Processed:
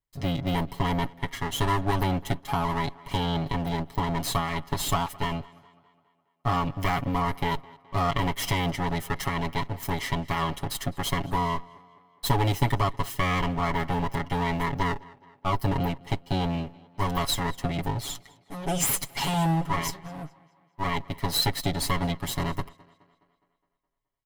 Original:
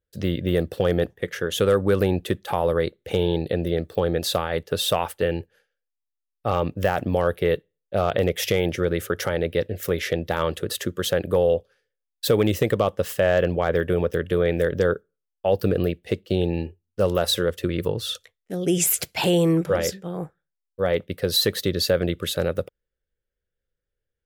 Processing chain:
lower of the sound and its delayed copy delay 0.98 ms
comb filter 7.2 ms, depth 92%
tape delay 209 ms, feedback 55%, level −21.5 dB, low-pass 5,200 Hz
level −5 dB

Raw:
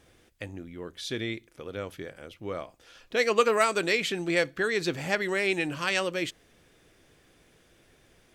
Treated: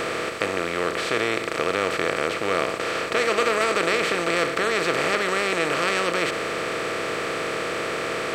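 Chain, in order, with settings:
compressor on every frequency bin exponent 0.2
level −4.5 dB

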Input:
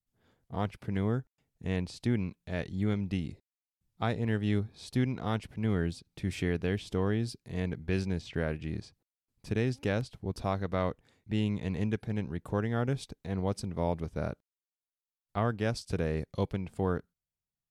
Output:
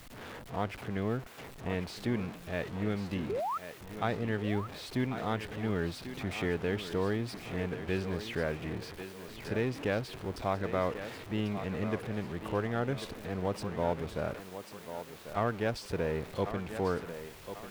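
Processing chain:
converter with a step at zero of −36.5 dBFS
bass and treble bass −7 dB, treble −10 dB
sound drawn into the spectrogram rise, 0:03.29–0:03.58, 360–1,400 Hz −33 dBFS
on a send: feedback echo with a high-pass in the loop 1,093 ms, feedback 42%, high-pass 220 Hz, level −9.5 dB

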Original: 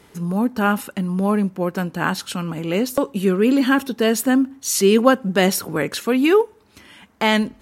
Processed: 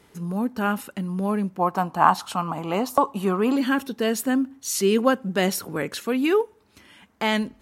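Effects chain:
0:01.59–0:03.56: flat-topped bell 900 Hz +15 dB 1.1 octaves
level −5.5 dB

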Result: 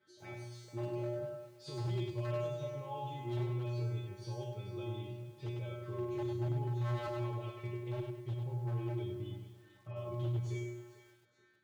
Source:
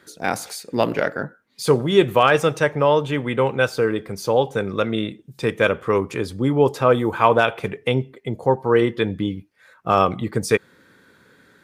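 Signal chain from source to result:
pitch shifter swept by a sawtooth −1 semitone, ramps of 765 ms
low-pass filter 4,300 Hz 12 dB per octave
low-shelf EQ 390 Hz +6 dB
in parallel at −2.5 dB: downward compressor, threshold −24 dBFS, peak gain reduction 15.5 dB
on the sum: brickwall limiter −11.5 dBFS, peak gain reduction 12 dB
flanger swept by the level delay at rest 5 ms, full sweep at −20.5 dBFS
tuned comb filter 120 Hz, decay 0.86 s, harmonics odd, mix 100%
wave folding −33.5 dBFS
feedback echo with a high-pass in the loop 438 ms, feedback 33%, high-pass 210 Hz, level −15 dB
feedback echo at a low word length 100 ms, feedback 35%, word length 11 bits, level −5.5 dB
level +1 dB

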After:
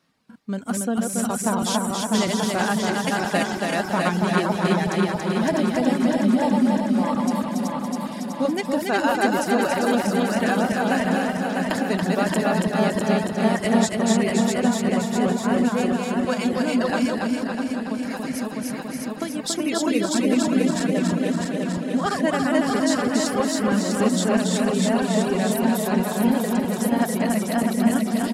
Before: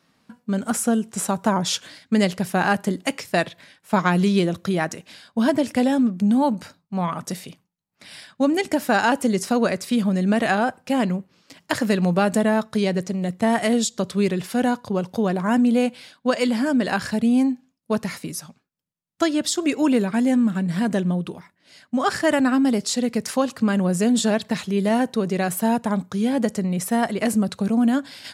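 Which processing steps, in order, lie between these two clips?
feedback delay that plays each chunk backwards 325 ms, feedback 76%, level −1.5 dB
reverb reduction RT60 0.86 s
0:17.07–0:19.44: downward compressor, threshold −21 dBFS, peak gain reduction 8.5 dB
on a send: repeating echo 281 ms, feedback 44%, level −3.5 dB
on the sum: level −4 dB

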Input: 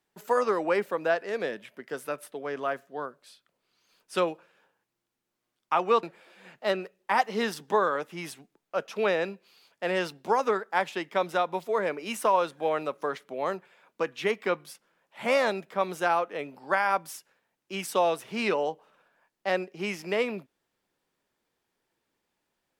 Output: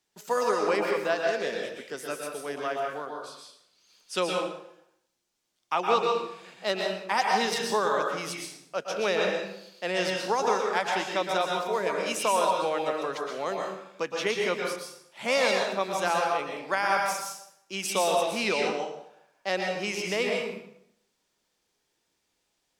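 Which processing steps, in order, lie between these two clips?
drawn EQ curve 1,600 Hz 0 dB, 6,100 Hz +11 dB, 14,000 Hz +1 dB
dense smooth reverb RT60 0.73 s, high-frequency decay 0.8×, pre-delay 105 ms, DRR 0 dB
level −2.5 dB

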